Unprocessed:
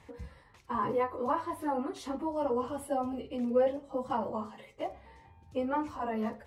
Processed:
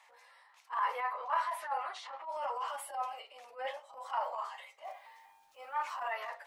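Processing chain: steep high-pass 680 Hz 36 dB/octave; transient shaper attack -12 dB, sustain +4 dB; dynamic bell 2 kHz, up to +7 dB, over -52 dBFS, Q 0.75; 1.13–2.29 s: level-controlled noise filter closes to 2.2 kHz, open at -31 dBFS; 4.85–6.13 s: word length cut 12-bit, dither none

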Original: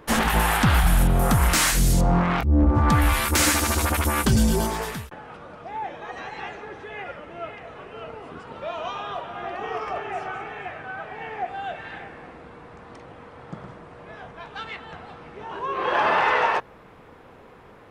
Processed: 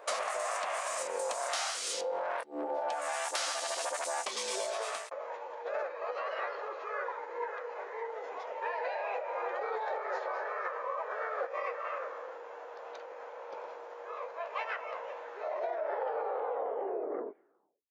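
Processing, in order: tape stop on the ending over 2.47 s; high-pass 640 Hz 24 dB/octave; formant shift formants -6 st; compression 10:1, threshold -34 dBFS, peak gain reduction 17 dB; trim +2.5 dB

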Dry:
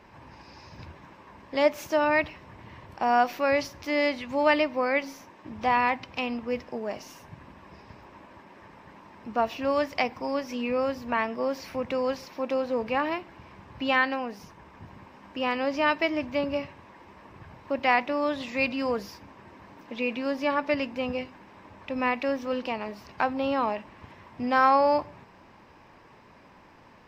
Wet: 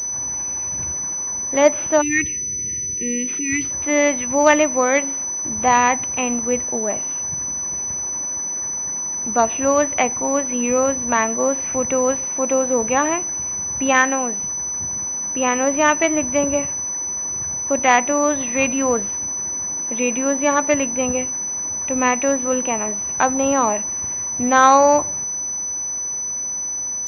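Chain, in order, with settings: spectral selection erased 2.02–3.71 s, 480–1800 Hz; class-D stage that switches slowly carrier 6 kHz; trim +8.5 dB

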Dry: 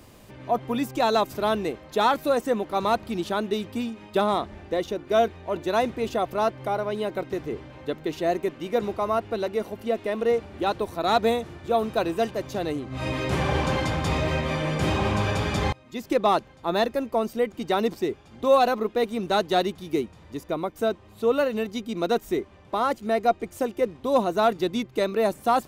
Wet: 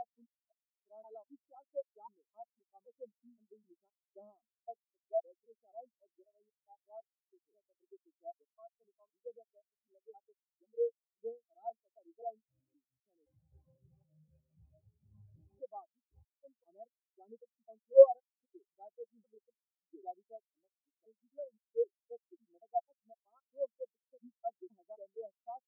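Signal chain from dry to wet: slices played last to first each 260 ms, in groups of 3; spectral contrast expander 4:1

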